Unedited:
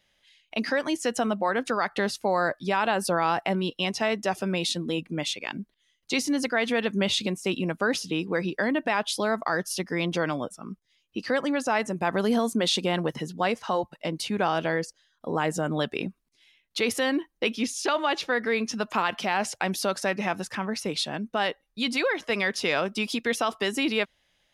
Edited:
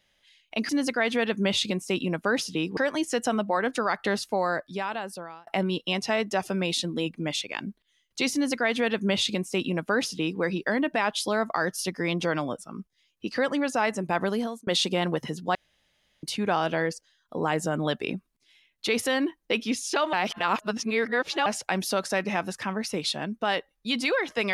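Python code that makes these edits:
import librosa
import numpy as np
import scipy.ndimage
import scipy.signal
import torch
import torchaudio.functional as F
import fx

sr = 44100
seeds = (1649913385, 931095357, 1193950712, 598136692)

y = fx.edit(x, sr, fx.fade_out_span(start_s=2.14, length_s=1.25),
    fx.duplicate(start_s=6.25, length_s=2.08, to_s=0.69),
    fx.fade_out_span(start_s=12.12, length_s=0.47),
    fx.room_tone_fill(start_s=13.47, length_s=0.68),
    fx.reverse_span(start_s=18.05, length_s=1.33), tone=tone)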